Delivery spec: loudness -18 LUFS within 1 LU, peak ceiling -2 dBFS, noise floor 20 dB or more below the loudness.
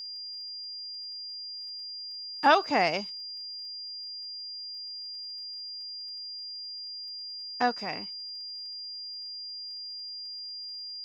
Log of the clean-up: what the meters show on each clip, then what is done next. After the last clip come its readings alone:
tick rate 40 per s; steady tone 4.8 kHz; tone level -37 dBFS; loudness -33.0 LUFS; peak level -8.5 dBFS; loudness target -18.0 LUFS
-> de-click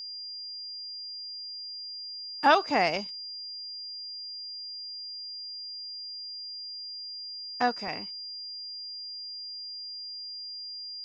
tick rate 0 per s; steady tone 4.8 kHz; tone level -37 dBFS
-> band-stop 4.8 kHz, Q 30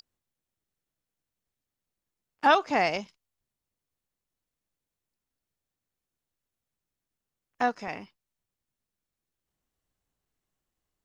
steady tone not found; loudness -26.0 LUFS; peak level -8.5 dBFS; loudness target -18.0 LUFS
-> trim +8 dB; peak limiter -2 dBFS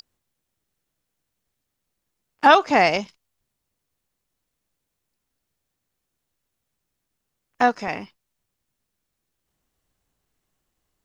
loudness -18.5 LUFS; peak level -2.0 dBFS; noise floor -80 dBFS

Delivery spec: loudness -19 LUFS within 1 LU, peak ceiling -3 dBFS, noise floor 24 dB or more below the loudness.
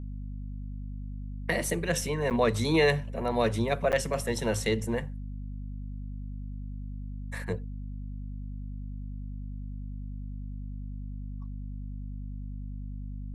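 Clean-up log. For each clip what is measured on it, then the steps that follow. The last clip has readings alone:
dropouts 2; longest dropout 8.4 ms; hum 50 Hz; highest harmonic 250 Hz; hum level -35 dBFS; loudness -32.5 LUFS; peak level -12.0 dBFS; loudness target -19.0 LUFS
-> interpolate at 2.30/3.92 s, 8.4 ms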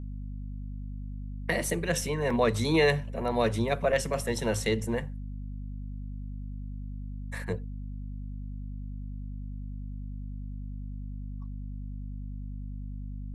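dropouts 0; hum 50 Hz; highest harmonic 250 Hz; hum level -35 dBFS
-> hum notches 50/100/150/200/250 Hz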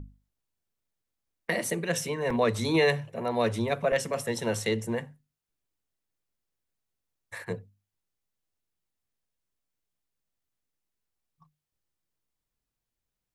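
hum not found; loudness -28.5 LUFS; peak level -13.0 dBFS; loudness target -19.0 LUFS
-> trim +9.5 dB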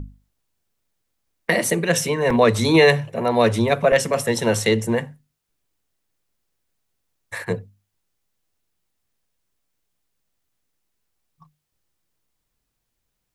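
loudness -19.0 LUFS; peak level -3.5 dBFS; noise floor -77 dBFS

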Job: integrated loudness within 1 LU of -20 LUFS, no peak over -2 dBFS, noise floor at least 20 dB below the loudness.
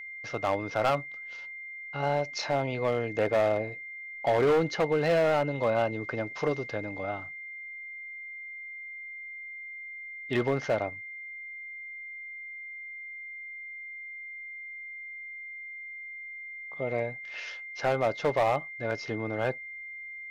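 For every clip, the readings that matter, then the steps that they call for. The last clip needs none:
clipped samples 1.3%; clipping level -19.5 dBFS; steady tone 2.1 kHz; tone level -39 dBFS; loudness -31.5 LUFS; peak level -19.5 dBFS; loudness target -20.0 LUFS
-> clip repair -19.5 dBFS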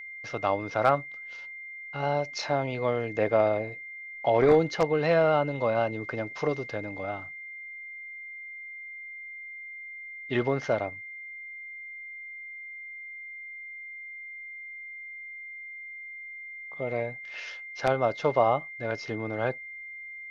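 clipped samples 0.0%; steady tone 2.1 kHz; tone level -39 dBFS
-> band-stop 2.1 kHz, Q 30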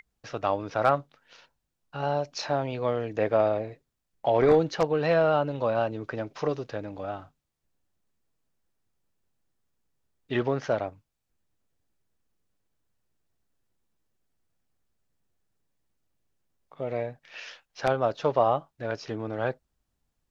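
steady tone not found; loudness -27.5 LUFS; peak level -10.0 dBFS; loudness target -20.0 LUFS
-> trim +7.5 dB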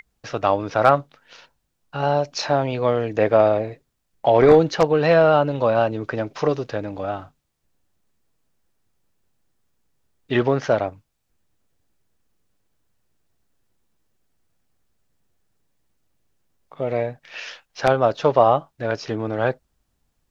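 loudness -20.0 LUFS; peak level -2.5 dBFS; noise floor -73 dBFS

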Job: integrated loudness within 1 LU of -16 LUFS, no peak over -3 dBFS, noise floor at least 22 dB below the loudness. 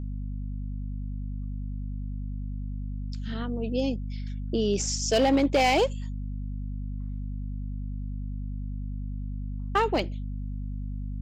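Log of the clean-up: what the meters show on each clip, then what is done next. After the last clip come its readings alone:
clipped samples 0.3%; clipping level -16.0 dBFS; hum 50 Hz; highest harmonic 250 Hz; hum level -30 dBFS; loudness -30.5 LUFS; peak level -16.0 dBFS; loudness target -16.0 LUFS
-> clip repair -16 dBFS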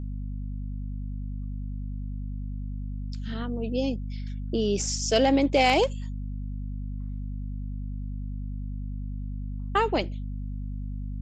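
clipped samples 0.0%; hum 50 Hz; highest harmonic 250 Hz; hum level -30 dBFS
-> de-hum 50 Hz, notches 5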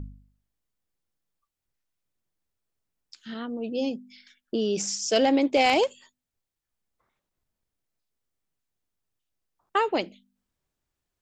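hum not found; loudness -25.5 LUFS; peak level -8.0 dBFS; loudness target -16.0 LUFS
-> trim +9.5 dB; peak limiter -3 dBFS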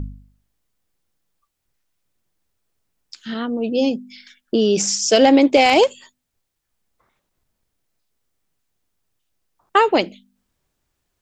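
loudness -16.5 LUFS; peak level -3.0 dBFS; noise floor -77 dBFS

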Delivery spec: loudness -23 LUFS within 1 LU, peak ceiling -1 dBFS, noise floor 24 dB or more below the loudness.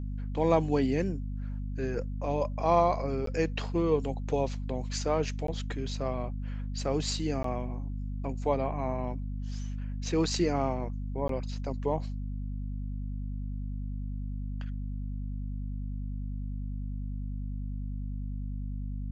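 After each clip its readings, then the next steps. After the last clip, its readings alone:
dropouts 4; longest dropout 13 ms; hum 50 Hz; highest harmonic 250 Hz; hum level -32 dBFS; loudness -32.5 LUFS; peak level -11.0 dBFS; loudness target -23.0 LUFS
-> interpolate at 3.26/5.47/7.43/11.28 s, 13 ms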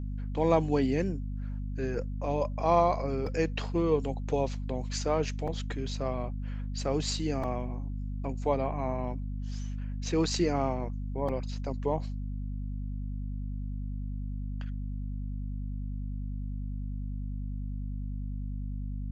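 dropouts 0; hum 50 Hz; highest harmonic 250 Hz; hum level -32 dBFS
-> hum notches 50/100/150/200/250 Hz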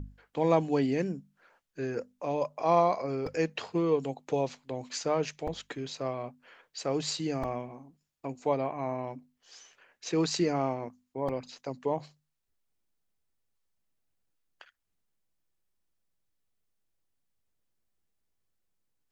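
hum not found; loudness -31.5 LUFS; peak level -12.0 dBFS; loudness target -23.0 LUFS
-> trim +8.5 dB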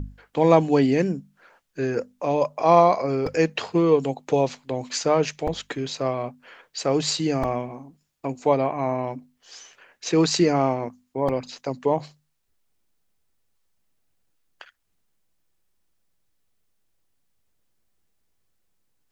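loudness -23.0 LUFS; peak level -3.5 dBFS; noise floor -72 dBFS

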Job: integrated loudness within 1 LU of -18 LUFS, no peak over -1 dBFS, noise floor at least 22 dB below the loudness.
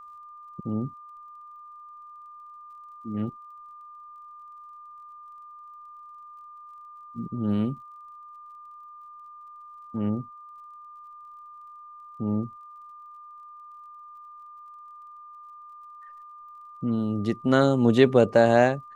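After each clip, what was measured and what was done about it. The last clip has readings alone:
tick rate 28 per s; steady tone 1.2 kHz; tone level -43 dBFS; loudness -24.5 LUFS; peak level -4.5 dBFS; loudness target -18.0 LUFS
-> de-click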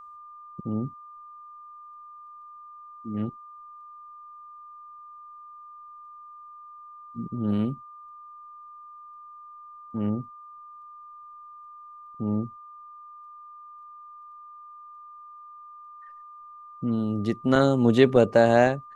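tick rate 0 per s; steady tone 1.2 kHz; tone level -43 dBFS
-> band-stop 1.2 kHz, Q 30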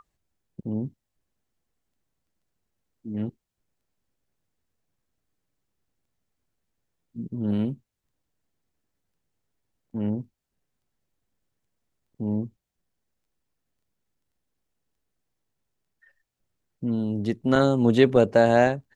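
steady tone not found; loudness -24.0 LUFS; peak level -4.5 dBFS; loudness target -18.0 LUFS
-> trim +6 dB; peak limiter -1 dBFS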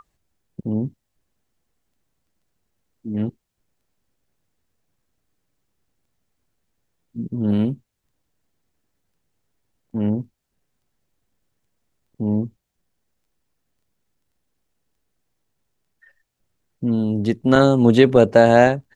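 loudness -18.5 LUFS; peak level -1.0 dBFS; noise floor -76 dBFS

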